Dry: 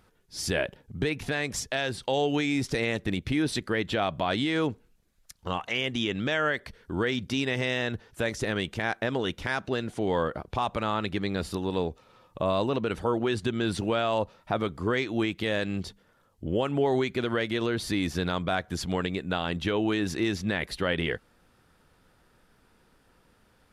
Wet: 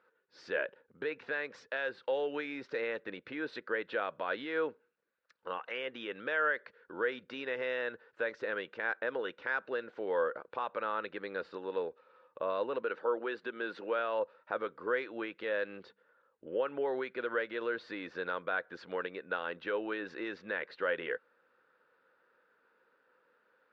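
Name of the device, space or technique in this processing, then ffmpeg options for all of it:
phone earpiece: -filter_complex "[0:a]asettb=1/sr,asplit=3[s0][s1][s2];[s0]atrim=end=12.824[s3];[s1]atrim=start=12.82:end=13.99,asetpts=PTS-STARTPTS,afade=t=in:d=0.004:c=qsin,afade=t=out:st=1.166:d=0.004:c=qsin,highpass=200[s4];[s2]atrim=start=13.986[s5];[s3][s4]acrossfade=d=0.004:c1=hsin:c2=qsin[s6];[s6][s5]acrossfade=d=0.004:c1=qsin:c2=hsin,highpass=490,equalizer=f=500:t=q:w=4:g=9,equalizer=f=720:t=q:w=4:g=-8,equalizer=f=1500:t=q:w=4:g=7,equalizer=f=2200:t=q:w=4:g=-4,equalizer=f=3200:t=q:w=4:g=-8,lowpass=f=3300:w=0.5412,lowpass=f=3300:w=1.3066,volume=0.501"

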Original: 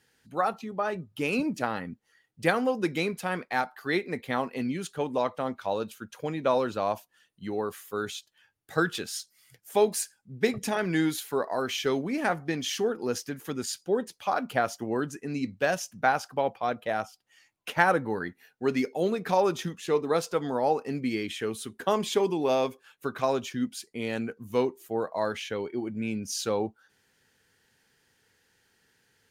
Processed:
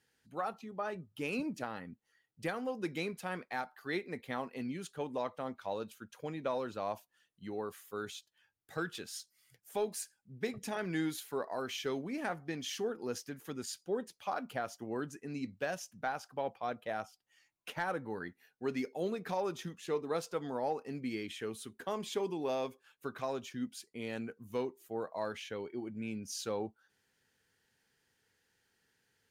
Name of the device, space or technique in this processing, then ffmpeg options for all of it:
soft clipper into limiter: -af "asoftclip=type=tanh:threshold=0.335,alimiter=limit=0.158:level=0:latency=1:release=434,volume=0.376"

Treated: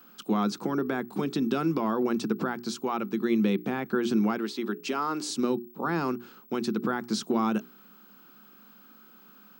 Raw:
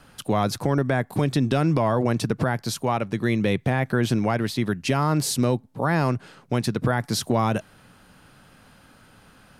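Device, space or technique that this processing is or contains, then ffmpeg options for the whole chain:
old television with a line whistle: -filter_complex "[0:a]bandreject=f=60:t=h:w=6,bandreject=f=120:t=h:w=6,bandreject=f=180:t=h:w=6,bandreject=f=240:t=h:w=6,bandreject=f=300:t=h:w=6,bandreject=f=360:t=h:w=6,bandreject=f=420:t=h:w=6,asettb=1/sr,asplit=3[s0][s1][s2];[s0]atrim=end=4.384[s3];[s1]atrim=start=4.38:end=5.3,asetpts=PTS-STARTPTS,afade=t=in:d=0.004:c=qsin,afade=t=out:st=0.916:d=0.004:c=qsin,highpass=300[s4];[s2]atrim=start=5.296[s5];[s3][s4]acrossfade=d=0.004:c1=hsin:c2=qsin[s6];[s6][s5]acrossfade=d=0.004:c1=qsin:c2=hsin,highpass=f=190:w=0.5412,highpass=f=190:w=1.3066,equalizer=f=210:t=q:w=4:g=9,equalizer=f=360:t=q:w=4:g=8,equalizer=f=610:t=q:w=4:g=-9,equalizer=f=1300:t=q:w=4:g=6,equalizer=f=1900:t=q:w=4:g=-6,lowpass=f=7900:w=0.5412,lowpass=f=7900:w=1.3066,aeval=exprs='val(0)+0.00447*sin(2*PI*15734*n/s)':c=same,volume=0.501"

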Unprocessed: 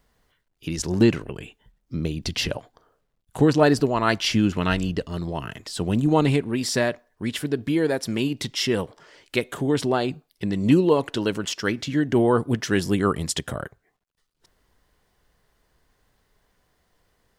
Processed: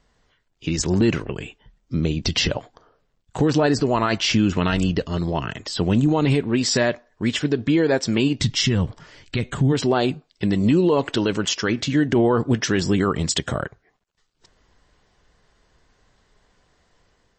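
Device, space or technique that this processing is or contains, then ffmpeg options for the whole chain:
low-bitrate web radio: -filter_complex "[0:a]asplit=3[s0][s1][s2];[s0]afade=t=out:st=8.39:d=0.02[s3];[s1]asubboost=boost=7:cutoff=160,afade=t=in:st=8.39:d=0.02,afade=t=out:st=9.71:d=0.02[s4];[s2]afade=t=in:st=9.71:d=0.02[s5];[s3][s4][s5]amix=inputs=3:normalize=0,dynaudnorm=f=190:g=5:m=1.41,alimiter=limit=0.237:level=0:latency=1:release=45,volume=1.41" -ar 24000 -c:a libmp3lame -b:a 32k

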